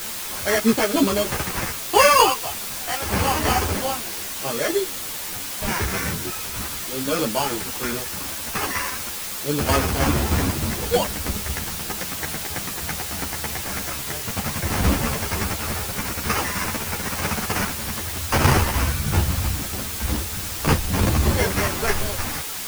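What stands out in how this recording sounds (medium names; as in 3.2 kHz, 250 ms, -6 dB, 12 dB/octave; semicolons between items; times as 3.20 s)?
aliases and images of a low sample rate 3.8 kHz, jitter 0%; tremolo saw down 3.2 Hz, depth 55%; a quantiser's noise floor 6-bit, dither triangular; a shimmering, thickened sound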